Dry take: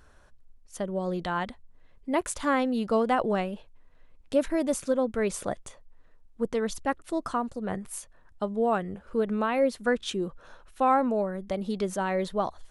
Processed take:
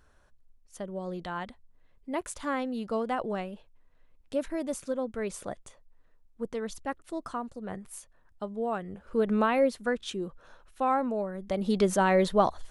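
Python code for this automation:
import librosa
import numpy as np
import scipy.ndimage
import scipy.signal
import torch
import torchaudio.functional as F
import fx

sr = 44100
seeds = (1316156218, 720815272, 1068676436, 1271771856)

y = fx.gain(x, sr, db=fx.line((8.8, -6.0), (9.38, 3.0), (9.92, -4.0), (11.33, -4.0), (11.76, 5.0)))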